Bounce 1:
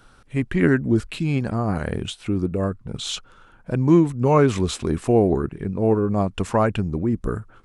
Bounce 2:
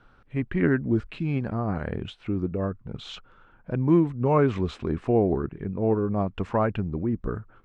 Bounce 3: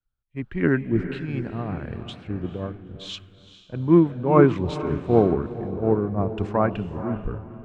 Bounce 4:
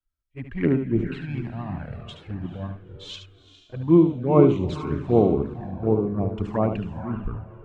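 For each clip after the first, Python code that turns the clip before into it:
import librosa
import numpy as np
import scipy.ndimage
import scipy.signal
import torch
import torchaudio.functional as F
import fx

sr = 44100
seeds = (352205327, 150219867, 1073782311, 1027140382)

y1 = scipy.signal.sosfilt(scipy.signal.butter(2, 2600.0, 'lowpass', fs=sr, output='sos'), x)
y1 = y1 * 10.0 ** (-4.5 / 20.0)
y2 = fx.echo_diffused(y1, sr, ms=451, feedback_pct=48, wet_db=-6.5)
y2 = fx.band_widen(y2, sr, depth_pct=100)
y3 = fx.env_flanger(y2, sr, rest_ms=3.1, full_db=-17.5)
y3 = y3 + 10.0 ** (-8.5 / 20.0) * np.pad(y3, (int(73 * sr / 1000.0), 0))[:len(y3)]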